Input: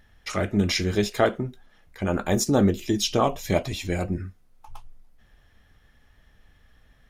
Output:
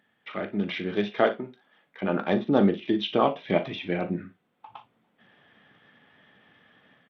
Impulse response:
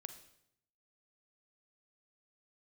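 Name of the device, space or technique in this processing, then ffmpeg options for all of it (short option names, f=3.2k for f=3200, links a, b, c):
Bluetooth headset: -filter_complex "[0:a]asettb=1/sr,asplit=3[a][b][c];[a]atrim=end=1.274[d];[b]atrim=start=1.27:end=2.03,asetpts=PTS-STARTPTS,afade=t=in:d=0.004:c=qsin,afade=t=out:st=0.756:d=0.004:c=qsin,lowshelf=f=220:g=-10[e];[c]atrim=start=2.026[f];[d][e]acrossfade=d=0.004:c1=hsin:c2=qsin[g];[g][f]acrossfade=d=0.004:c1=qsin:c2=hsin,highpass=f=160:w=0.5412,highpass=f=160:w=1.3066,aecho=1:1:40|58:0.211|0.15,dynaudnorm=f=630:g=3:m=12dB,aresample=8000,aresample=44100,volume=-6dB" -ar 32000 -c:a sbc -b:a 64k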